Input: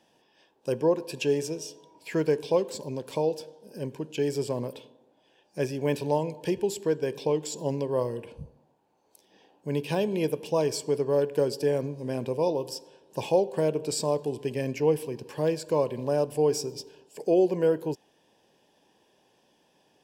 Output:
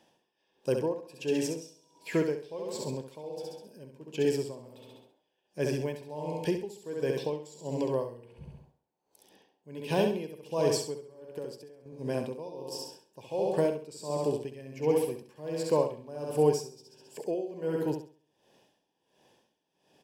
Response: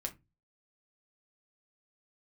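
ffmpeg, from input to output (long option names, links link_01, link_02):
-filter_complex "[0:a]asettb=1/sr,asplit=3[link_01][link_02][link_03];[link_01]atrim=end=10.964[link_04];[link_02]atrim=start=10.96:end=11.86,asetpts=PTS-STARTPTS,afade=type=in:duration=0.004:curve=qsin,afade=type=out:start_time=0.896:duration=0.004:curve=qsin,acompressor=threshold=-36dB:ratio=8[link_05];[link_03]atrim=start=11.856[link_06];[link_04][link_05]acrossfade=duration=0.004:curve1=hsin:curve2=qsin[link_07];[link_07][link_06]acrossfade=duration=0.004:curve1=qsin:curve2=hsin,aecho=1:1:67|134|201|268|335|402:0.596|0.298|0.149|0.0745|0.0372|0.0186,aeval=exprs='val(0)*pow(10,-18*(0.5-0.5*cos(2*PI*1.4*n/s))/20)':channel_layout=same"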